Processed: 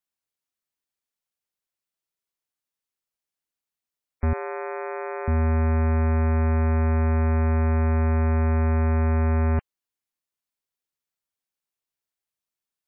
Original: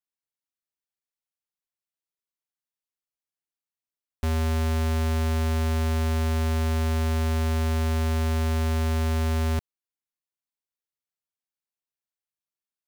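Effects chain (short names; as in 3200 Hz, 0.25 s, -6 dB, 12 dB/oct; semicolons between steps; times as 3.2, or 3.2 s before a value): spectral gate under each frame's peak -30 dB strong; 4.33–5.28 brick-wall FIR high-pass 350 Hz; gain +3.5 dB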